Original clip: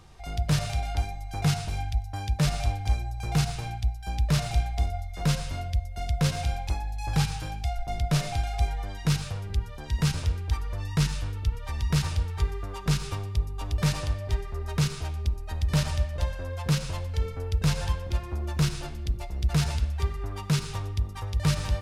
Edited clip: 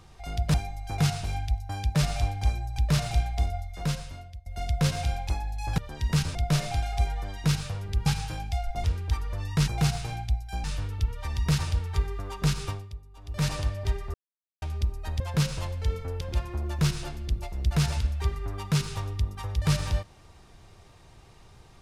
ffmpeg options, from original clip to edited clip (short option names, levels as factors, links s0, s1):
-filter_complex "[0:a]asplit=16[s0][s1][s2][s3][s4][s5][s6][s7][s8][s9][s10][s11][s12][s13][s14][s15];[s0]atrim=end=0.542[s16];[s1]atrim=start=0.978:end=3.222[s17];[s2]atrim=start=4.178:end=5.86,asetpts=PTS-STARTPTS,afade=t=out:st=0.752:d=0.93:silence=0.0668344[s18];[s3]atrim=start=5.86:end=7.182,asetpts=PTS-STARTPTS,afade=t=in:d=0.004:c=hsin:silence=0.0668344[s19];[s4]atrim=start=9.668:end=10.242[s20];[s5]atrim=start=7.958:end=9.672[s21];[s6]atrim=start=7.178:end=7.962[s22];[s7]atrim=start=10.238:end=11.082[s23];[s8]atrim=start=3.218:end=4.182[s24];[s9]atrim=start=11.078:end=13.46,asetpts=PTS-STARTPTS,afade=t=out:st=2.062:d=0.32:c=qua:silence=0.158489[s25];[s10]atrim=start=13.46:end=13.59,asetpts=PTS-STARTPTS,volume=0.158[s26];[s11]atrim=start=13.59:end=14.58,asetpts=PTS-STARTPTS,afade=t=in:d=0.32:c=qua:silence=0.158489,afade=t=out:st=0.986:d=0.004:c=hsin[s27];[s12]atrim=start=14.58:end=15.06,asetpts=PTS-STARTPTS,volume=0[s28];[s13]atrim=start=15.06:end=15.642,asetpts=PTS-STARTPTS,afade=t=in:d=0.004:c=hsin[s29];[s14]atrim=start=16.518:end=17.532[s30];[s15]atrim=start=17.988[s31];[s16][s17]acrossfade=d=0.004:c1=hsin:c2=hsin[s32];[s18][s19]concat=n=2:v=0:a=1[s33];[s32][s33]acrossfade=d=0.004:c1=hsin:c2=hsin[s34];[s34][s20]acrossfade=d=0.004:c1=hsin:c2=hsin[s35];[s35][s21]acrossfade=d=0.004:c1=hsin:c2=hsin[s36];[s36][s22]acrossfade=d=0.004:c1=hsin:c2=hsin[s37];[s37][s23]acrossfade=d=0.004:c1=hsin:c2=hsin[s38];[s38][s24]acrossfade=d=0.004:c1=hsin:c2=hsin[s39];[s25][s26][s27][s28][s29]concat=n=5:v=0:a=1[s40];[s39][s40]acrossfade=d=0.004:c1=hsin:c2=hsin[s41];[s41][s30]acrossfade=d=0.004:c1=hsin:c2=hsin[s42];[s42][s31]acrossfade=d=0.004:c1=hsin:c2=hsin"